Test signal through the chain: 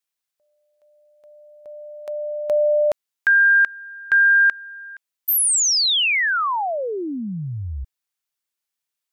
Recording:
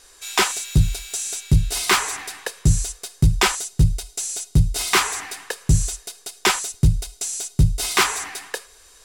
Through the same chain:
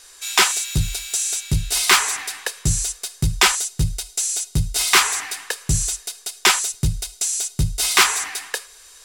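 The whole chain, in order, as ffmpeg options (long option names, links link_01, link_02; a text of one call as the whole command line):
ffmpeg -i in.wav -af "tiltshelf=frequency=780:gain=-5" out.wav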